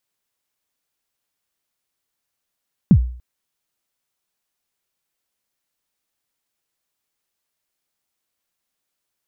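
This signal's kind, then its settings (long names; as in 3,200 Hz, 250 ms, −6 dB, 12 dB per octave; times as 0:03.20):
synth kick length 0.29 s, from 230 Hz, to 61 Hz, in 73 ms, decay 0.50 s, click off, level −4 dB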